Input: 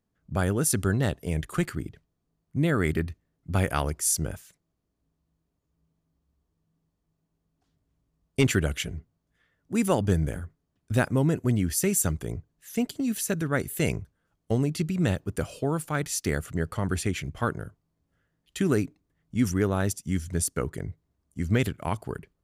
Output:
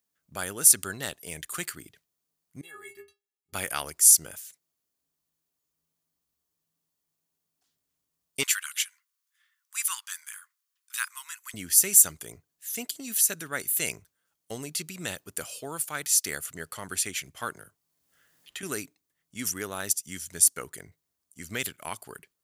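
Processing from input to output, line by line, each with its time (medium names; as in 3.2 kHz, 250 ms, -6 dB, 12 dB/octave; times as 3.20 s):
2.61–3.53 s: inharmonic resonator 400 Hz, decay 0.24 s, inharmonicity 0.008
8.43–11.54 s: steep high-pass 1 kHz 72 dB/octave
17.55–18.63 s: three bands compressed up and down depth 70%
whole clip: tilt EQ +4.5 dB/octave; trim -5 dB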